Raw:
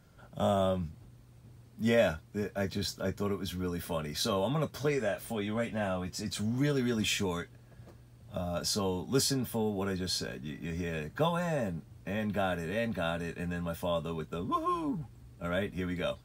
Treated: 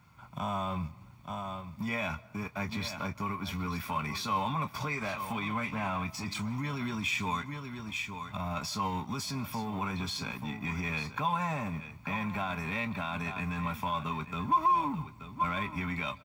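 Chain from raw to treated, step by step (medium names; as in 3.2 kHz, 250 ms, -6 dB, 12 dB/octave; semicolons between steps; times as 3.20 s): companding laws mixed up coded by A; delay 878 ms -15.5 dB; in parallel at -1 dB: compression, threshold -43 dBFS, peak gain reduction 20 dB; on the sum: high-pass 66 Hz; band-stop 3.2 kHz, Q 12; comb 0.9 ms, depth 52%; peak limiter -27.5 dBFS, peak gain reduction 12 dB; fifteen-band graphic EQ 400 Hz -6 dB, 1 kHz +11 dB, 2.5 kHz +10 dB, 10 kHz -6 dB; on a send at -22.5 dB: reverberation RT60 0.90 s, pre-delay 110 ms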